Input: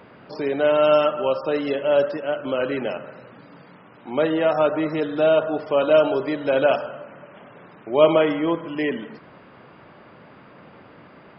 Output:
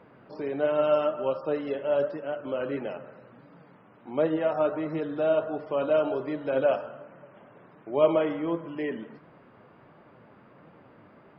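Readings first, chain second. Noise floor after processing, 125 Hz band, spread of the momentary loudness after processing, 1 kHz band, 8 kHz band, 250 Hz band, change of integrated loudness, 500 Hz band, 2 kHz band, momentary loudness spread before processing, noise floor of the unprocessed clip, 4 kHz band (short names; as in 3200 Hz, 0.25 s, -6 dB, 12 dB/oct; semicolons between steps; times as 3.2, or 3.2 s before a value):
-55 dBFS, -5.5 dB, 12 LU, -8.0 dB, n/a, -6.5 dB, -7.0 dB, -6.5 dB, -10.0 dB, 12 LU, -48 dBFS, -13.0 dB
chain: high shelf 2600 Hz -11.5 dB; flange 1.4 Hz, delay 5.7 ms, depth 4.4 ms, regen +69%; gain -2 dB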